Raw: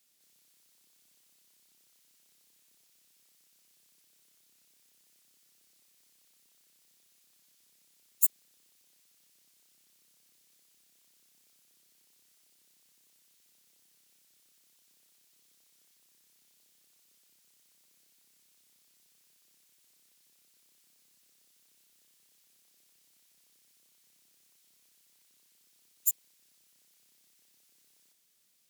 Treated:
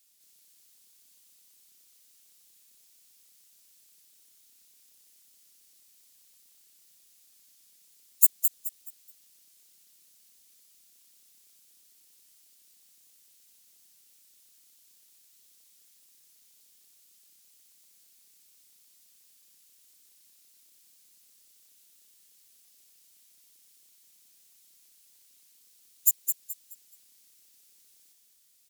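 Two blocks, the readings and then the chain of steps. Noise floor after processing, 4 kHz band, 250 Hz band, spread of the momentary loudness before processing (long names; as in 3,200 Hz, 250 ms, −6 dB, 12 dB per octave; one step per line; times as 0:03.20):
−62 dBFS, +3.5 dB, can't be measured, 6 LU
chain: high-shelf EQ 3,000 Hz +9.5 dB
on a send: echo with shifted repeats 213 ms, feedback 31%, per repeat +74 Hz, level −6.5 dB
on the sum: level −3.5 dB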